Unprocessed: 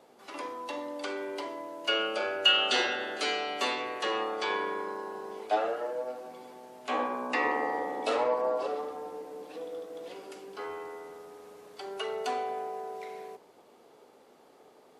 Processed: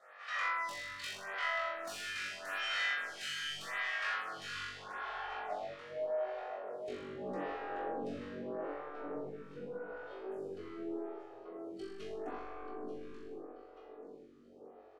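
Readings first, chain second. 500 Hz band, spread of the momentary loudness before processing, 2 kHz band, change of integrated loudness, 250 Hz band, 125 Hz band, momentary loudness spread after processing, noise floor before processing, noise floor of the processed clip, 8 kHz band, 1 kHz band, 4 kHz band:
-8.5 dB, 17 LU, -3.5 dB, -8.5 dB, -5.0 dB, n/a, 14 LU, -59 dBFS, -56 dBFS, -5.0 dB, -9.0 dB, -12.5 dB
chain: minimum comb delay 1.6 ms; high shelf 3200 Hz +12 dB; sine folder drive 11 dB, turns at -10.5 dBFS; high shelf 10000 Hz -10.5 dB; spectral noise reduction 8 dB; band-pass sweep 1700 Hz -> 300 Hz, 3.97–7.39; compressor 12:1, threshold -36 dBFS, peak gain reduction 21 dB; feedback echo 0.884 s, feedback 35%, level -11.5 dB; soft clip -37 dBFS, distortion -14 dB; flutter echo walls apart 3.6 m, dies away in 0.85 s; photocell phaser 0.82 Hz; gain +2 dB

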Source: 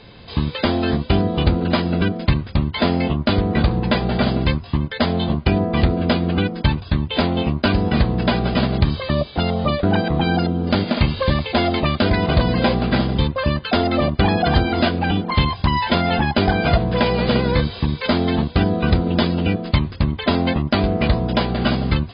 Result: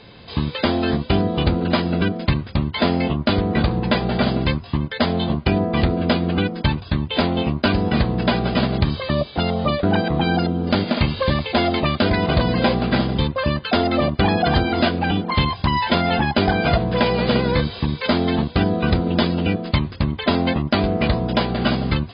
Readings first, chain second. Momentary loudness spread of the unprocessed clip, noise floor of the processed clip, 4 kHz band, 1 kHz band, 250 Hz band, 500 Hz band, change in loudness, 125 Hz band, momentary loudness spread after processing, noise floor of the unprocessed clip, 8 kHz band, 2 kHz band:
3 LU, -37 dBFS, 0.0 dB, 0.0 dB, -0.5 dB, 0.0 dB, -1.0 dB, -2.0 dB, 4 LU, -36 dBFS, n/a, 0.0 dB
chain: low shelf 64 Hz -7.5 dB

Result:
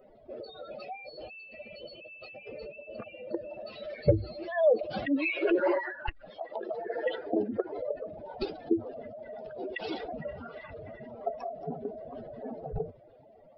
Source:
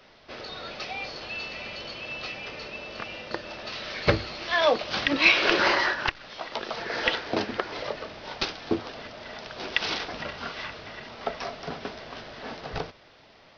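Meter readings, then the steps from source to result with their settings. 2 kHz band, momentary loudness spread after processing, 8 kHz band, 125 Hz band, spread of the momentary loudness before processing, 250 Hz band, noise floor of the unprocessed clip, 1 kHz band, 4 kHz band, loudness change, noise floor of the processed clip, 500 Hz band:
-13.0 dB, 18 LU, n/a, 0.0 dB, 17 LU, +0.5 dB, -55 dBFS, -8.5 dB, -19.0 dB, -5.5 dB, -56 dBFS, +0.5 dB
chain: spectral contrast raised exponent 2.9; band shelf 2300 Hz -12.5 dB 2.8 oct

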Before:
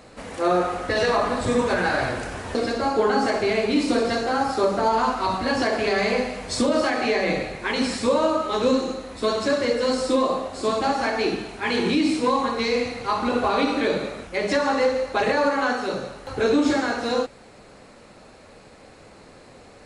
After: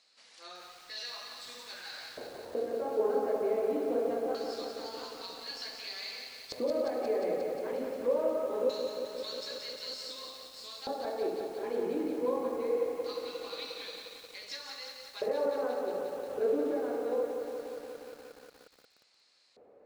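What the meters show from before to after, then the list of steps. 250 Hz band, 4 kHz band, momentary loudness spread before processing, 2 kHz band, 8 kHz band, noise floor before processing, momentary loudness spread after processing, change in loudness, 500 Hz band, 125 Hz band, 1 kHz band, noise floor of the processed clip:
-16.5 dB, -10.5 dB, 6 LU, -21.0 dB, -14.5 dB, -48 dBFS, 13 LU, -12.0 dB, -9.0 dB, under -20 dB, -17.5 dB, -64 dBFS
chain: LFO band-pass square 0.23 Hz 490–4600 Hz; lo-fi delay 0.178 s, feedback 80%, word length 8-bit, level -6 dB; gain -6.5 dB

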